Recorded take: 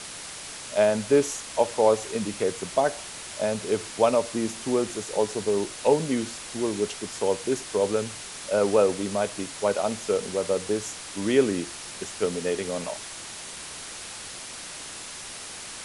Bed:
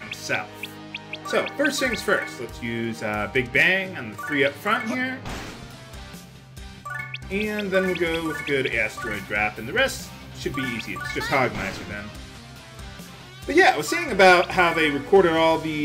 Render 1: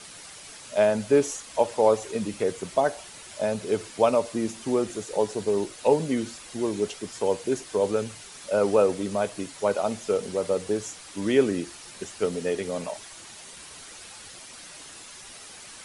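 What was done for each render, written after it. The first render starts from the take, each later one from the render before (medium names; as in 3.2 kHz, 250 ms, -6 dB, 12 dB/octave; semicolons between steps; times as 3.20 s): noise reduction 8 dB, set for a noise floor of -39 dBFS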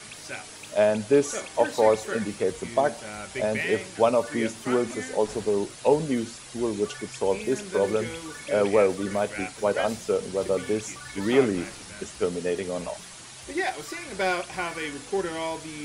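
add bed -12 dB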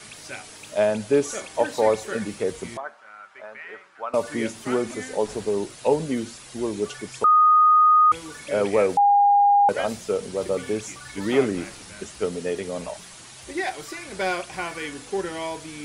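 2.77–4.14 s: band-pass filter 1.3 kHz, Q 3.3; 7.24–8.12 s: bleep 1.24 kHz -12 dBFS; 8.97–9.69 s: bleep 811 Hz -13 dBFS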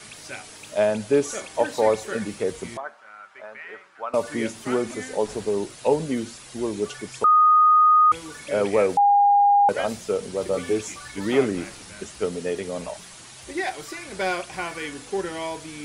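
10.52–11.08 s: doubling 12 ms -4 dB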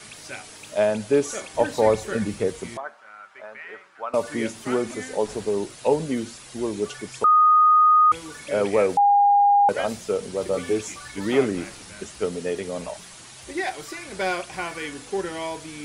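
1.54–2.48 s: bass shelf 160 Hz +11.5 dB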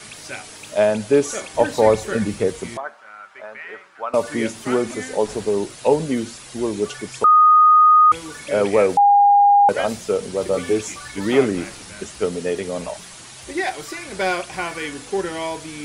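trim +4 dB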